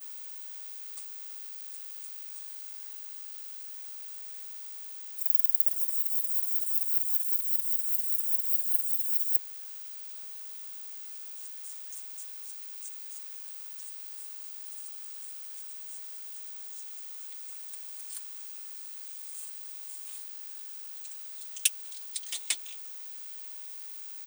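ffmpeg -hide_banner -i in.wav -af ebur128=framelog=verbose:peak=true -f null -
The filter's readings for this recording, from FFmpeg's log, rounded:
Integrated loudness:
  I:         -31.2 LUFS
  Threshold: -41.2 LUFS
Loudness range:
  LRA:        13.6 LU
  Threshold: -50.8 LUFS
  LRA low:   -38.7 LUFS
  LRA high:  -25.0 LUFS
True peak:
  Peak:       -2.2 dBFS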